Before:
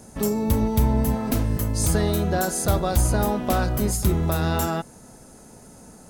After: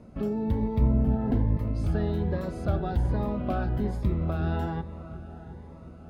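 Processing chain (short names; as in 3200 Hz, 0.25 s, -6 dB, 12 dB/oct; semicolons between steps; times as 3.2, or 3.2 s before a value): 0.81–1.57 tilt shelf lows +5 dB, about 1500 Hz; in parallel at +1 dB: compressor, threshold -26 dBFS, peak gain reduction 14.5 dB; on the sum: air absorption 400 m; on a send: dark delay 0.357 s, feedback 70%, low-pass 3400 Hz, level -15 dB; on the sum: cascading phaser rising 1.2 Hz; gain -8 dB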